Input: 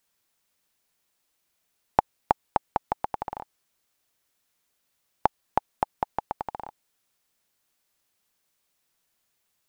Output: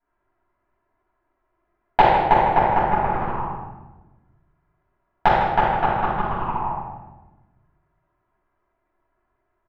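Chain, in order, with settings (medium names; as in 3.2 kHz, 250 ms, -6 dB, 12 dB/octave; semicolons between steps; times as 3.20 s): rattle on loud lows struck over -37 dBFS, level -23 dBFS; low-pass 1.5 kHz 24 dB/octave; peaking EQ 260 Hz -7 dB 0.23 oct; touch-sensitive flanger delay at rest 3 ms, full sweep at -26 dBFS; on a send: delay 153 ms -10.5 dB; on the sum: simulated room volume 570 m³, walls mixed, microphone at 8 m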